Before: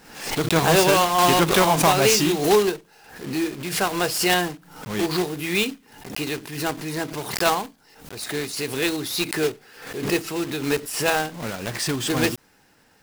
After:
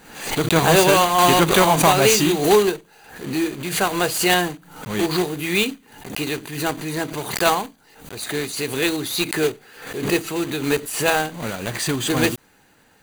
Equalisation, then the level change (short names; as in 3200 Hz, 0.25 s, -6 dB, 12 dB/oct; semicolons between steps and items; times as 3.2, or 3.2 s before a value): Butterworth band-stop 5300 Hz, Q 6.7; +2.5 dB